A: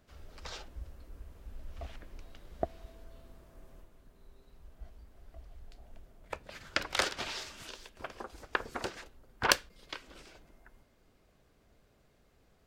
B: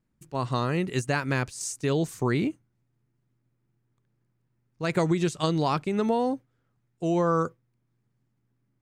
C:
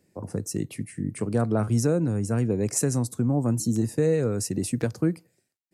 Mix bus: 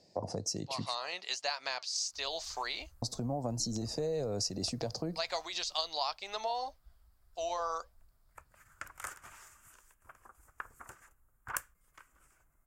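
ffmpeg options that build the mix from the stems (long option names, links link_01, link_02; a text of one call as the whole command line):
ffmpeg -i stem1.wav -i stem2.wav -i stem3.wav -filter_complex "[0:a]firequalizer=gain_entry='entry(120,0);entry(200,-9);entry(450,-12);entry(1200,4);entry(4000,-20);entry(7200,7);entry(12000,11)':delay=0.05:min_phase=1,adelay=2050,volume=-11.5dB[link_01];[1:a]highpass=1400,dynaudnorm=framelen=370:gausssize=3:maxgain=9dB,flanger=delay=1.5:depth=2.5:regen=-82:speed=1.7:shape=triangular,adelay=350,volume=-6.5dB[link_02];[2:a]alimiter=limit=-23dB:level=0:latency=1:release=133,equalizer=frequency=8000:width=0.59:gain=6,volume=-3dB,asplit=3[link_03][link_04][link_05];[link_03]atrim=end=0.95,asetpts=PTS-STARTPTS,afade=type=out:start_time=0.946:duration=0.004:curve=hsin[link_06];[link_04]atrim=start=0.95:end=3.02,asetpts=PTS-STARTPTS,volume=0[link_07];[link_05]atrim=start=3.02,asetpts=PTS-STARTPTS,afade=type=in:duration=0.004:curve=hsin[link_08];[link_06][link_07][link_08]concat=n=3:v=0:a=1[link_09];[link_02][link_09]amix=inputs=2:normalize=0,firequalizer=gain_entry='entry(350,0);entry(660,15);entry(1400,-3);entry(2400,0);entry(4700,15);entry(9000,-13)':delay=0.05:min_phase=1,acompressor=threshold=-33dB:ratio=2.5,volume=0dB[link_10];[link_01][link_10]amix=inputs=2:normalize=0" out.wav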